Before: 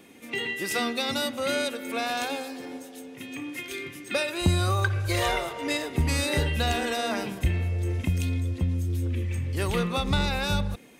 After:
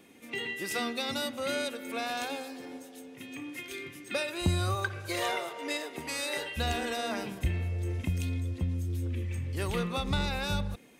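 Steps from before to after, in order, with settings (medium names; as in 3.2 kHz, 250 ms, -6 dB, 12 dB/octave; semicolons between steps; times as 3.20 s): 4.74–6.56 s: high-pass 140 Hz -> 560 Hz 12 dB/octave; trim -5 dB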